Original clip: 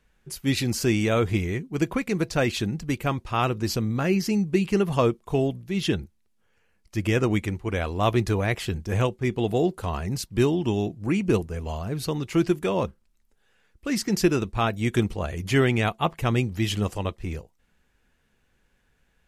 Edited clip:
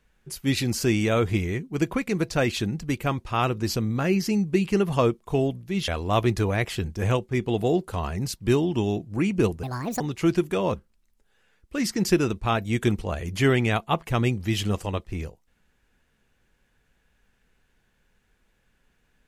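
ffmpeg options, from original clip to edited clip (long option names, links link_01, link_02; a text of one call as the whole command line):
ffmpeg -i in.wav -filter_complex "[0:a]asplit=4[link_01][link_02][link_03][link_04];[link_01]atrim=end=5.882[link_05];[link_02]atrim=start=7.778:end=11.534[link_06];[link_03]atrim=start=11.53:end=12.12,asetpts=PTS-STARTPTS,asetrate=69678,aresample=44100[link_07];[link_04]atrim=start=12.116[link_08];[link_05][link_06]acrossfade=duration=0.004:curve1=hsin:curve2=hsin[link_09];[link_09][link_07]acrossfade=duration=0.004:curve1=hsin:curve2=hsin[link_10];[link_10][link_08]acrossfade=duration=0.004:curve1=hsin:curve2=hsin" out.wav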